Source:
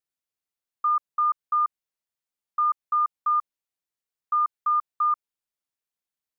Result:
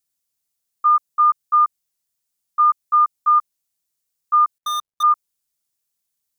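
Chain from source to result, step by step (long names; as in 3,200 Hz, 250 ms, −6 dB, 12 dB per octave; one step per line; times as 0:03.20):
0:04.58–0:05.03: running median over 25 samples
in parallel at +2 dB: output level in coarse steps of 22 dB
on the sum: bass and treble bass +6 dB, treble +12 dB
level +1.5 dB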